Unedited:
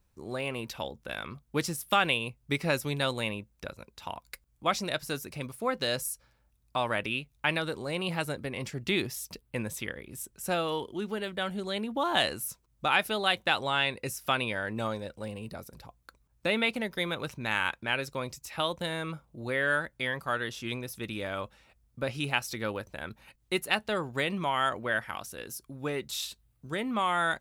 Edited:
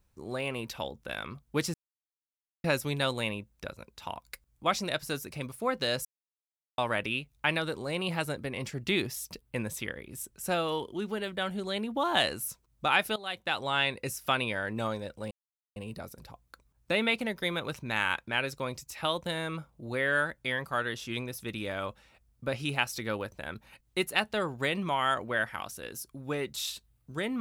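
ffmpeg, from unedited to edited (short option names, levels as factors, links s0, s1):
-filter_complex "[0:a]asplit=7[s0][s1][s2][s3][s4][s5][s6];[s0]atrim=end=1.74,asetpts=PTS-STARTPTS,afade=t=out:st=1.736:d=0.004:c=hsin[s7];[s1]atrim=start=1.74:end=2.64,asetpts=PTS-STARTPTS,volume=0[s8];[s2]atrim=start=2.64:end=6.05,asetpts=PTS-STARTPTS,afade=t=in:d=0.004:c=hsin,afade=t=out:st=3.406:d=0.004:c=hsin[s9];[s3]atrim=start=6.05:end=6.78,asetpts=PTS-STARTPTS,volume=0[s10];[s4]atrim=start=6.78:end=13.16,asetpts=PTS-STARTPTS,afade=t=in:d=0.004:c=hsin,afade=t=out:st=6.376:d=0.004:c=hsin:silence=0.149624[s11];[s5]atrim=start=13.16:end=15.31,asetpts=PTS-STARTPTS,afade=t=in:d=0.64:silence=0.149624,afade=t=out:st=2.146:d=0.004:c=hsin,apad=pad_dur=0.45[s12];[s6]atrim=start=15.31,asetpts=PTS-STARTPTS,afade=t=in:d=0.004:c=hsin[s13];[s7][s8][s9][s10][s11][s12][s13]concat=n=7:v=0:a=1"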